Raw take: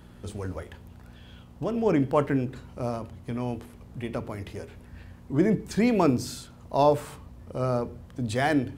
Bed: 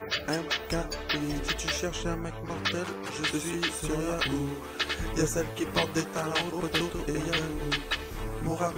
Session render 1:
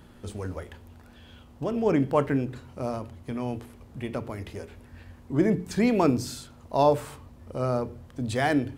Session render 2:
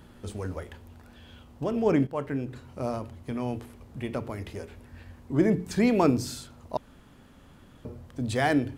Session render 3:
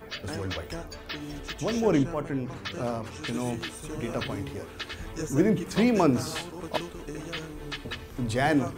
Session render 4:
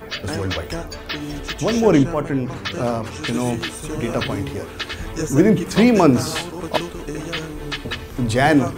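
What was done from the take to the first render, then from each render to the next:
de-hum 60 Hz, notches 3
2.07–2.78 fade in, from -12 dB; 6.77–7.85 room tone
add bed -7 dB
gain +9 dB; limiter -2 dBFS, peak gain reduction 2 dB

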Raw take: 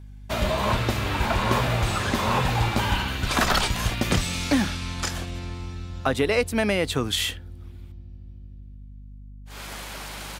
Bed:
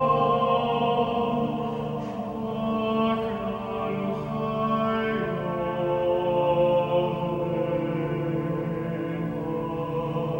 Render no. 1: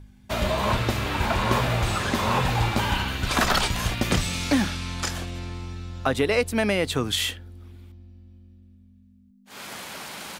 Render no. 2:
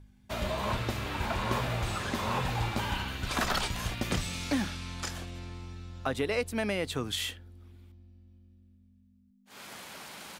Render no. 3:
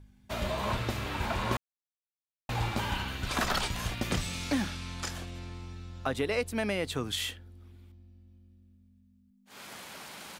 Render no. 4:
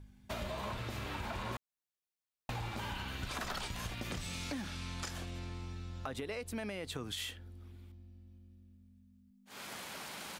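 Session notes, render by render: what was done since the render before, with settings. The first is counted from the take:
de-hum 50 Hz, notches 3
gain -8 dB
1.57–2.49 mute
limiter -22.5 dBFS, peak gain reduction 6.5 dB; compressor 4:1, threshold -38 dBFS, peak gain reduction 9 dB

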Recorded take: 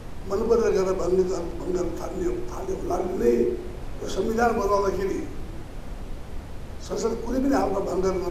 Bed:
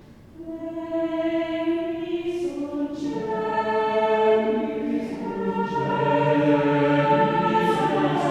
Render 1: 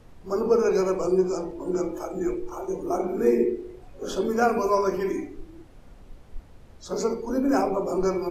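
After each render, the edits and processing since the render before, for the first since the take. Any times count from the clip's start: noise print and reduce 13 dB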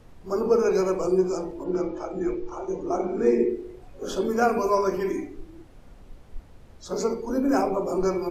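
1.63–3.48 LPF 5000 Hz -> 7500 Hz 24 dB/oct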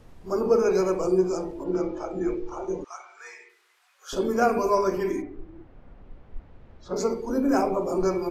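2.84–4.13 HPF 1200 Hz 24 dB/oct; 5.21–6.95 LPF 1900 Hz -> 2900 Hz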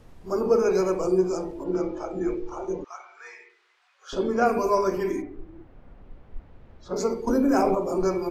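2.73–4.46 LPF 4900 Hz; 7.27–7.75 fast leveller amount 70%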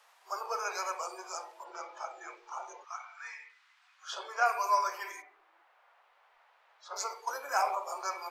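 inverse Chebyshev high-pass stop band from 240 Hz, stop band 60 dB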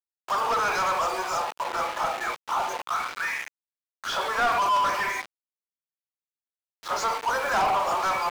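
requantised 8-bit, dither none; overdrive pedal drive 29 dB, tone 1800 Hz, clips at -15 dBFS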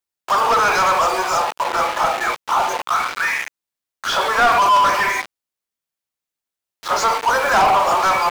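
gain +9 dB

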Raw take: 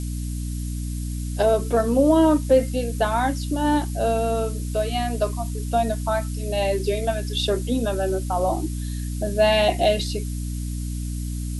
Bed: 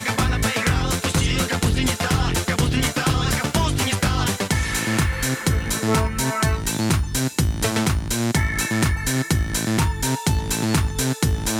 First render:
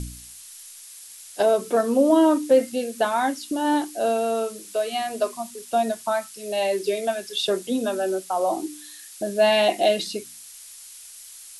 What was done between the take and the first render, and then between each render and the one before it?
de-hum 60 Hz, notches 5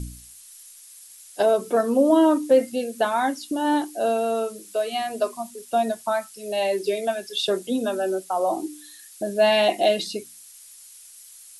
denoiser 6 dB, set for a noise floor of -44 dBFS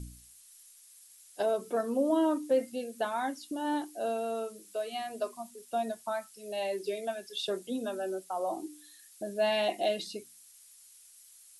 gain -10 dB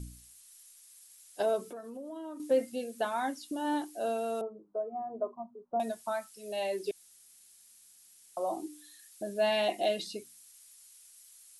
1.64–2.4 compressor 4:1, threshold -43 dBFS; 4.41–5.8 steep low-pass 1100 Hz; 6.91–8.37 room tone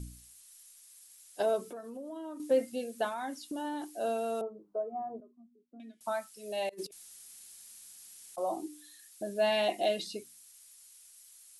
3.08–3.97 compressor, threshold -33 dBFS; 5.2–6.01 vowel filter i; 6.69–8.38 negative-ratio compressor -42 dBFS, ratio -0.5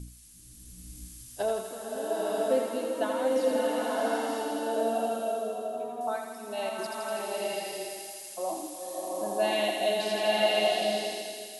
on a send: thinning echo 82 ms, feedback 78%, high-pass 840 Hz, level -4.5 dB; on the sum: bloom reverb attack 0.97 s, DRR -4 dB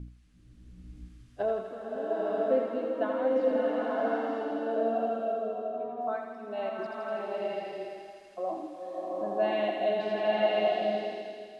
LPF 1800 Hz 12 dB/oct; notch 910 Hz, Q 8.8

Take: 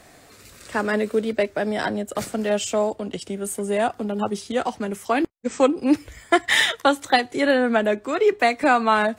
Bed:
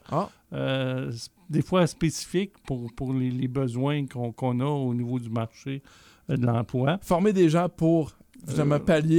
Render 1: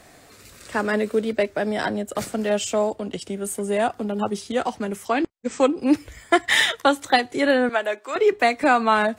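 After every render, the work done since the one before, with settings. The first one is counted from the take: 5.08–5.8 elliptic low-pass 8300 Hz; 7.69–8.16 HPF 640 Hz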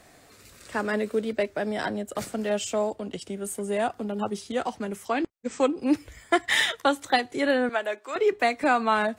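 gain -4.5 dB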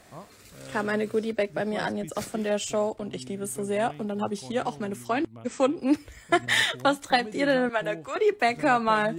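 add bed -17.5 dB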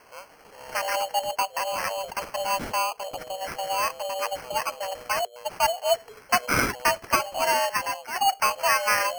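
frequency shift +370 Hz; sample-and-hold 12×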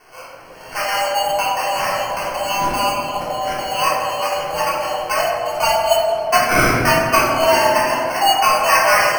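tape echo 0.163 s, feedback 89%, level -6 dB, low-pass 1200 Hz; shoebox room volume 580 m³, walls mixed, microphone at 3.4 m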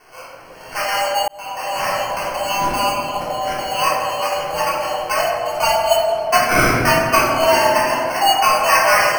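1.28–1.89 fade in

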